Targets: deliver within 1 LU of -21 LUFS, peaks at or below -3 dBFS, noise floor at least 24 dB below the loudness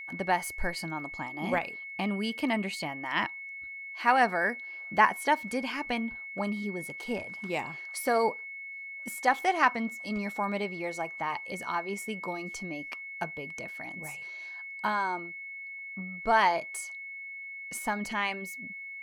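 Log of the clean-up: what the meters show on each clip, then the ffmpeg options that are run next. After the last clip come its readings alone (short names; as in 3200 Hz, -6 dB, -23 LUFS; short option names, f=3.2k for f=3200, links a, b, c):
steady tone 2200 Hz; tone level -39 dBFS; loudness -31.5 LUFS; peak -8.0 dBFS; loudness target -21.0 LUFS
-> -af "bandreject=f=2.2k:w=30"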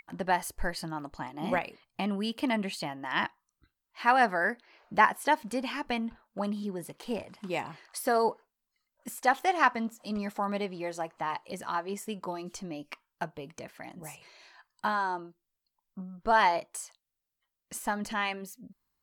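steady tone none; loudness -31.0 LUFS; peak -8.0 dBFS; loudness target -21.0 LUFS
-> -af "volume=10dB,alimiter=limit=-3dB:level=0:latency=1"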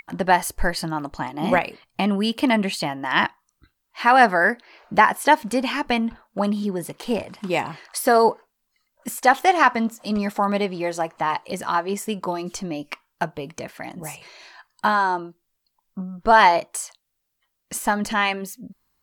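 loudness -21.5 LUFS; peak -3.0 dBFS; noise floor -76 dBFS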